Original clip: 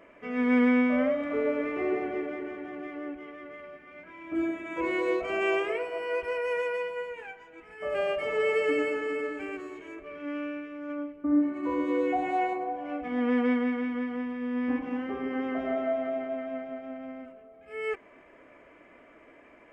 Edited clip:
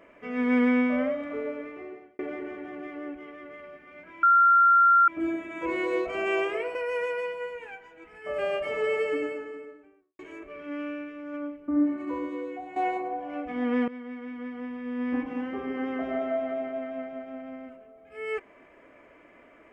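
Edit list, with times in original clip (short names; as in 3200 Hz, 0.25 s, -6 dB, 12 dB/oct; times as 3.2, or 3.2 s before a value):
0.85–2.19 fade out
4.23 add tone 1380 Hz -15 dBFS 0.85 s
5.9–6.31 cut
8.26–9.75 studio fade out
11.57–12.32 fade out quadratic, to -12 dB
13.44–14.65 fade in, from -18.5 dB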